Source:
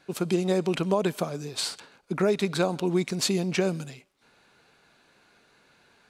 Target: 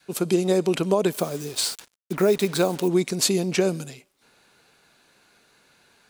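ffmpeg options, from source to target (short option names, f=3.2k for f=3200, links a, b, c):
-filter_complex "[0:a]adynamicequalizer=threshold=0.0158:dfrequency=400:dqfactor=0.91:tfrequency=400:tqfactor=0.91:attack=5:release=100:ratio=0.375:range=2.5:mode=boostabove:tftype=bell,asettb=1/sr,asplit=3[a][b][c];[a]atrim=end=1.124[d];[b]atrim=start=1.12:end=2.88,asetpts=PTS-STARTPTS,afade=t=in:d=0.004:c=qsin,afade=t=out:st=1.756:d=0.004:c=qsin,acrusher=bits=6:mix=0:aa=0.5[e];[c]atrim=start=2.876[f];[d][e]acrossfade=d=0.004:c1=hsin:c2=qsin[g];[g][f]acrossfade=d=0.004:c1=qsin:c2=hsin,crystalizer=i=1.5:c=0"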